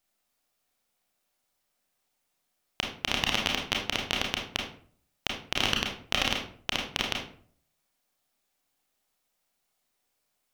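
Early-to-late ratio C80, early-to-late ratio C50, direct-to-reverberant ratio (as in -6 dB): 9.5 dB, 5.0 dB, -0.5 dB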